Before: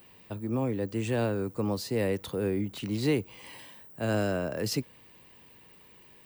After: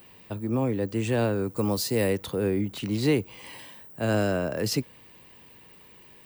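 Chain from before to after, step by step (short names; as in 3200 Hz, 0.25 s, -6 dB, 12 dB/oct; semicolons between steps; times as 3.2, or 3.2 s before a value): 1.56–2.13 high shelf 5300 Hz +9.5 dB; gain +3.5 dB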